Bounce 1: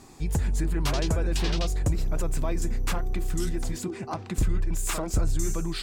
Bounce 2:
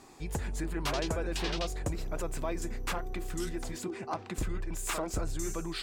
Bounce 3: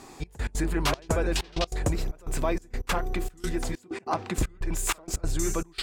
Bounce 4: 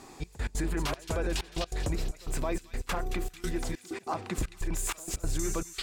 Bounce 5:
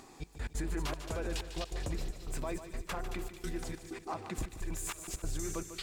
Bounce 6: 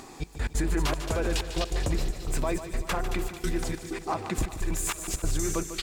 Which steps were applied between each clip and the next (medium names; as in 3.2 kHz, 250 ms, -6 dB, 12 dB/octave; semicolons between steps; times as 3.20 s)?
tone controls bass -9 dB, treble -4 dB; trim -1.5 dB
trance gate "xxx..x.xxxxx..x" 192 bpm -24 dB; trim +7.5 dB
peak limiter -18.5 dBFS, peak gain reduction 7 dB; feedback echo behind a high-pass 222 ms, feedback 50%, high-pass 2.7 kHz, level -8 dB; trim -2.5 dB
upward compressor, threshold -47 dBFS; bit-crushed delay 148 ms, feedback 55%, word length 10-bit, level -11 dB; trim -6 dB
delay 387 ms -17.5 dB; trim +9 dB